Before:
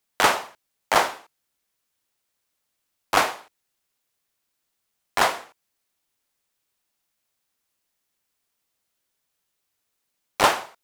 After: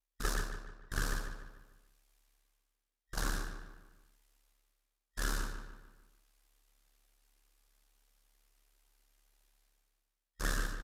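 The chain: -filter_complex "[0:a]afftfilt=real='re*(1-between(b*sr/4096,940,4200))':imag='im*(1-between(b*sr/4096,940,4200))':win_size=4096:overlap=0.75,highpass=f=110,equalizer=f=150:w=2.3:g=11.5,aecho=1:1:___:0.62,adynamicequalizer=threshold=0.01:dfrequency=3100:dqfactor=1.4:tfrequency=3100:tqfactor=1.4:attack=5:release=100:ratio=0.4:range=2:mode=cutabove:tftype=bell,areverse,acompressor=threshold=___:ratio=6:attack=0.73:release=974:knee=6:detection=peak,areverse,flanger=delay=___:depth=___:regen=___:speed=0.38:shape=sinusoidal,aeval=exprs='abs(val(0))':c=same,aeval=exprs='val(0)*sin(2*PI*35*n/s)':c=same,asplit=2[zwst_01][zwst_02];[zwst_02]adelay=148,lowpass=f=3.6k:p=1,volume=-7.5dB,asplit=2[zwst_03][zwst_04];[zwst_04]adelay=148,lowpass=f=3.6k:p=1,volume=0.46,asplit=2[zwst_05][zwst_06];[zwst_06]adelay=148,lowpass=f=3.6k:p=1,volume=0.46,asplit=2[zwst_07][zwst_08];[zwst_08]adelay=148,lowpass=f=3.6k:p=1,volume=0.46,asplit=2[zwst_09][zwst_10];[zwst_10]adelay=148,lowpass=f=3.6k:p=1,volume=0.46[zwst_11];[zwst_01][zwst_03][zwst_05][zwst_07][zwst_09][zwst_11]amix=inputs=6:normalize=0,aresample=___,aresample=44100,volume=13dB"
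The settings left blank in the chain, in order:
2.5, -35dB, 3.4, 8.5, 33, 32000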